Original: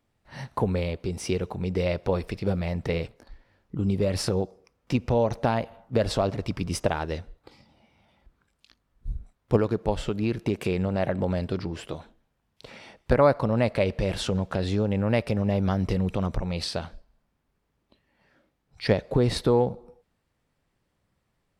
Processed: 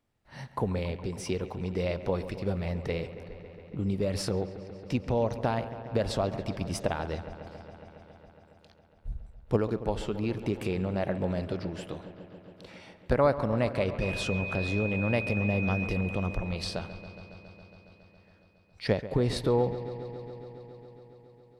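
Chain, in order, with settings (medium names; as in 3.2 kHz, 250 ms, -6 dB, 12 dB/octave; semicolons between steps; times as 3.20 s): 14.00–15.84 s: whistle 2.5 kHz -31 dBFS; on a send: feedback echo behind a low-pass 138 ms, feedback 82%, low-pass 3 kHz, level -14 dB; on the sum: trim -4.5 dB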